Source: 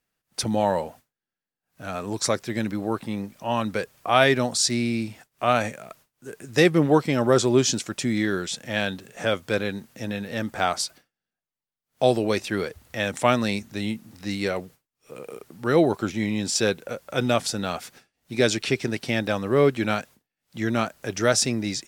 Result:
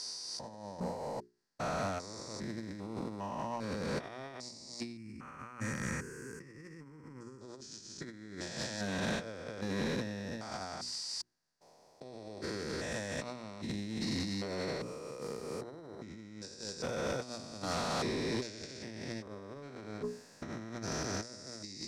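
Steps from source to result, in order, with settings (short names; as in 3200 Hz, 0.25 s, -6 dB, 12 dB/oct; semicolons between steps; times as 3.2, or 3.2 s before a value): stepped spectrum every 0.4 s; resonant high shelf 3900 Hz +7 dB, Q 3; notches 60/120/180/240/300/360/420 Hz; limiter -18.5 dBFS, peak gain reduction 10.5 dB; negative-ratio compressor -37 dBFS, ratio -0.5; 4.97–7.41 fixed phaser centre 1600 Hz, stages 4; soft clip -30.5 dBFS, distortion -12 dB; air absorption 71 m; small resonant body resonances 990/1900 Hz, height 7 dB, ringing for 25 ms; noise-modulated level, depth 50%; gain +3 dB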